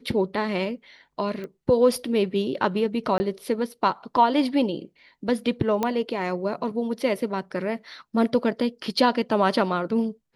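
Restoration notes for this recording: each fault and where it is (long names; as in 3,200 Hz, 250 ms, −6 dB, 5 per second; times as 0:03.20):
0:01.44: click −24 dBFS
0:03.18–0:03.20: drop-out 20 ms
0:05.83: click −11 dBFS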